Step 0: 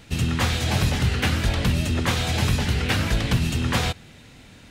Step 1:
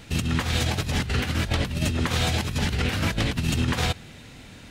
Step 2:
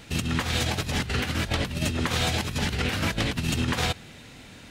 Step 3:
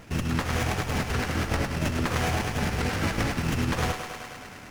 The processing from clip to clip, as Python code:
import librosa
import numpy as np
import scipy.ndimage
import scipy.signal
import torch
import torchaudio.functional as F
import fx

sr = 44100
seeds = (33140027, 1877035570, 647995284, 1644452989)

y1 = fx.over_compress(x, sr, threshold_db=-24.0, ratio=-0.5)
y2 = fx.low_shelf(y1, sr, hz=150.0, db=-5.0)
y3 = fx.echo_thinned(y2, sr, ms=104, feedback_pct=80, hz=370.0, wet_db=-7.0)
y3 = fx.running_max(y3, sr, window=9)